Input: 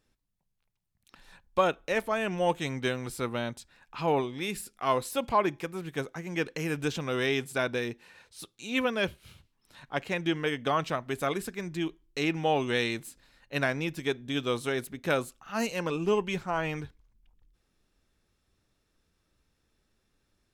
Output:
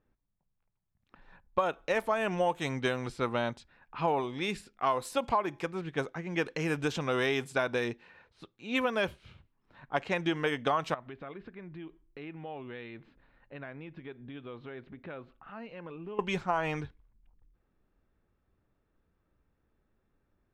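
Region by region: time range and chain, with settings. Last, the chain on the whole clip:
10.94–16.19 s: low-pass 4.1 kHz 24 dB/octave + compression 3:1, threshold -44 dBFS
whole clip: level-controlled noise filter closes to 1.5 kHz, open at -25 dBFS; dynamic bell 910 Hz, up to +7 dB, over -40 dBFS, Q 0.83; compression 6:1, threshold -25 dBFS

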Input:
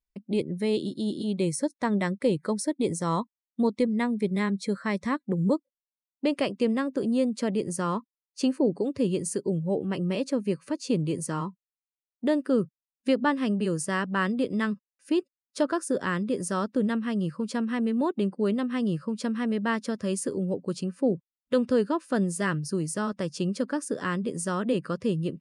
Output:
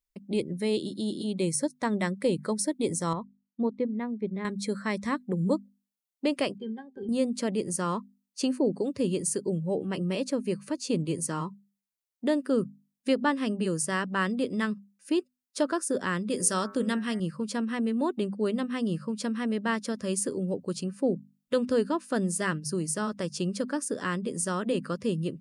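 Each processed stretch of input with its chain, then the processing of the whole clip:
3.13–4.45 s: high-pass 82 Hz + tape spacing loss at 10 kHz 39 dB + upward expansion, over -33 dBFS
6.58–7.09 s: high-pass 51 Hz + pitch-class resonator G, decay 0.11 s
16.30–17.20 s: treble shelf 2.1 kHz +7.5 dB + de-hum 101.3 Hz, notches 23
whole clip: treble shelf 4.7 kHz +6.5 dB; hum notches 50/100/150/200/250 Hz; trim -1.5 dB

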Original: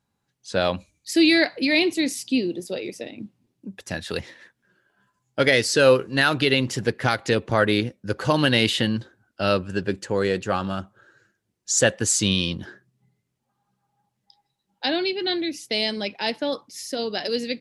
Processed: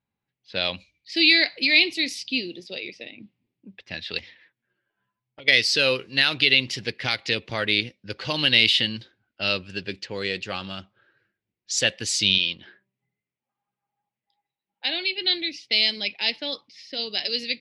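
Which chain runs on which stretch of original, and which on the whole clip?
4.18–5.48 s: touch-sensitive flanger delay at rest 9.3 ms, full sweep at -22 dBFS + hum notches 50/100/150/200/250/300/350/400/450 Hz + compression 10:1, threshold -32 dBFS
12.38–15.18 s: low-pass 3.9 kHz + bass shelf 220 Hz -11.5 dB + de-hum 194.9 Hz, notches 5
whole clip: level-controlled noise filter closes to 1.5 kHz, open at -20.5 dBFS; high-order bell 3.3 kHz +14.5 dB; trim -9 dB

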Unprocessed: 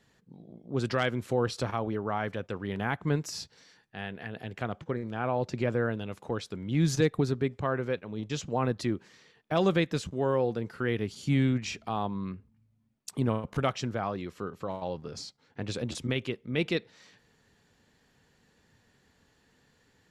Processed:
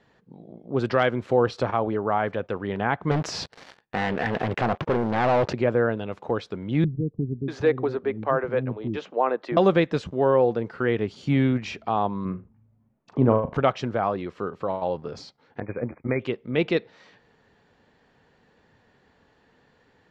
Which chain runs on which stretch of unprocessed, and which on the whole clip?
3.11–5.53 s: waveshaping leveller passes 5 + compression 2:1, threshold -33 dBFS + loudspeaker Doppler distortion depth 0.37 ms
6.84–9.57 s: tone controls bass -1 dB, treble -13 dB + bands offset in time lows, highs 640 ms, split 300 Hz
12.25–13.54 s: low-pass 2.5 kHz + tilt shelf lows +4 dB, about 1.4 kHz + flutter echo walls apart 6.6 m, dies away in 0.22 s
15.60–16.20 s: expander -32 dBFS + brick-wall FIR low-pass 2.5 kHz + tape noise reduction on one side only encoder only
whole clip: low-pass 4.2 kHz 12 dB/octave; peaking EQ 680 Hz +7.5 dB 2.5 oct; trim +1.5 dB

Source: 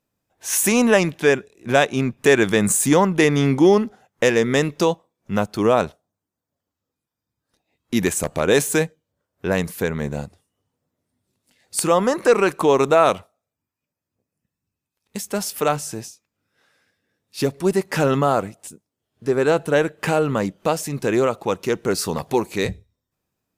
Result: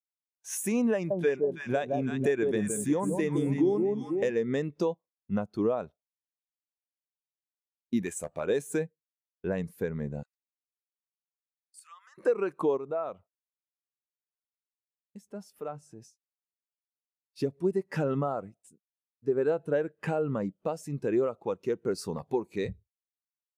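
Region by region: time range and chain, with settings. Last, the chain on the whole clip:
0.94–4.31 s: treble shelf 6.5 kHz +4.5 dB + echo whose repeats swap between lows and highs 164 ms, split 900 Hz, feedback 62%, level -3.5 dB
8.02–8.50 s: bass shelf 390 Hz -7 dB + doubling 12 ms -10 dB
10.23–12.18 s: high-pass 1.3 kHz 24 dB/octave + compression 2:1, threshold -40 dBFS
12.77–16.02 s: treble shelf 2.9 kHz -7 dB + compression 1.5:1, threshold -36 dBFS
whole clip: gate -43 dBFS, range -20 dB; compression 6:1, threshold -18 dBFS; spectral contrast expander 1.5:1; trim -7.5 dB

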